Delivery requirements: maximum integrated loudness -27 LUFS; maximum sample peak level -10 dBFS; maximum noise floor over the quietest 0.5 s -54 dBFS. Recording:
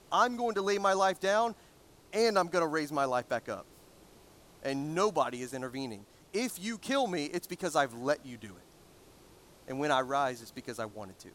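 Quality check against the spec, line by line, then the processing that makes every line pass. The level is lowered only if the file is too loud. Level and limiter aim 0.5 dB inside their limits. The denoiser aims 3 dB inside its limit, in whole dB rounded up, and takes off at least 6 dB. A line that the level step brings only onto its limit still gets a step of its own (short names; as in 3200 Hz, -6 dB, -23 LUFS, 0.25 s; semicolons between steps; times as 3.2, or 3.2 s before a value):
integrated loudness -32.0 LUFS: OK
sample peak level -13.0 dBFS: OK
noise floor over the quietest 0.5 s -59 dBFS: OK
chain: none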